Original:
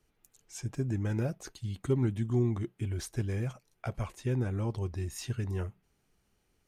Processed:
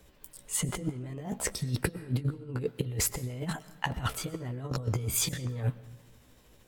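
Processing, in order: rotating-head pitch shifter +4 st; compressor with a negative ratio -39 dBFS, ratio -0.5; reverberation RT60 1.0 s, pre-delay 80 ms, DRR 17 dB; trim +8 dB

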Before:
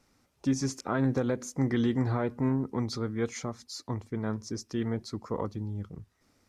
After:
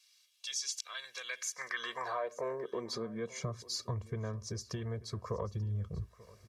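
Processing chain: high-pass sweep 3.3 kHz -> 62 Hz, 1.07–4.04 s; compression 6:1, threshold -37 dBFS, peak gain reduction 15 dB; comb 1.8 ms, depth 99%; delay 888 ms -20.5 dB; trim +1 dB

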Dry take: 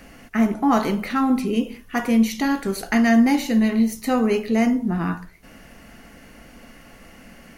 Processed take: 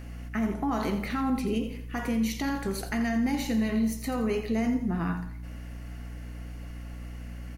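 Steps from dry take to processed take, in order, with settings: peak limiter -15 dBFS, peak gain reduction 8 dB; hum 60 Hz, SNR 10 dB; feedback delay 85 ms, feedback 41%, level -11 dB; trim -5.5 dB

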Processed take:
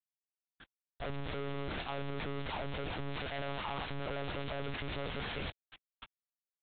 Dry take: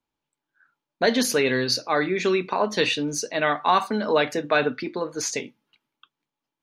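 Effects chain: CVSD coder 32 kbps; low-pass that closes with the level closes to 520 Hz, closed at -19 dBFS; waveshaping leveller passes 5; hard clipper -23.5 dBFS, distortion -9 dB; word length cut 10-bit, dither none; integer overflow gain 39.5 dB; monotone LPC vocoder at 8 kHz 140 Hz; trim +13.5 dB

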